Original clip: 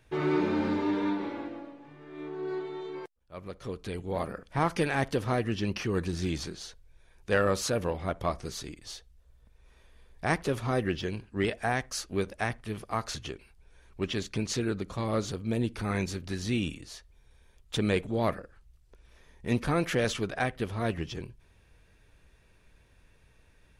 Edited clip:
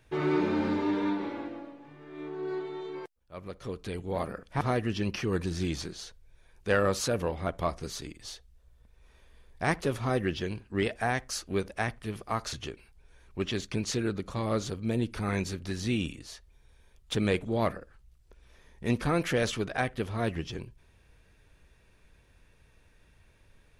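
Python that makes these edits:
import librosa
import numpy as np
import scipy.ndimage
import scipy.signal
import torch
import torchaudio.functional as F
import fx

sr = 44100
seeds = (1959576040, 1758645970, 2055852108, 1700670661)

y = fx.edit(x, sr, fx.cut(start_s=4.61, length_s=0.62), tone=tone)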